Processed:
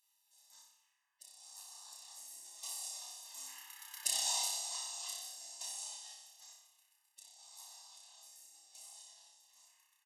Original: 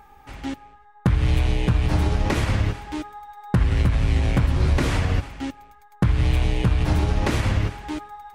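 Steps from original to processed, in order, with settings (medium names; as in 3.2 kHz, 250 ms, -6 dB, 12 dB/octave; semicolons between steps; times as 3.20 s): single-diode clipper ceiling -14.5 dBFS; Doppler pass-by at 3.48 s, 17 m/s, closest 2.5 m; high-pass 1.5 kHz 24 dB/octave; spectral gate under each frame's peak -20 dB weak; treble shelf 6.5 kHz +8.5 dB; comb 0.9 ms, depth 88%; tape speed -17%; on a send: flutter echo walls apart 5.2 m, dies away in 0.76 s; on the sum: trim +12 dB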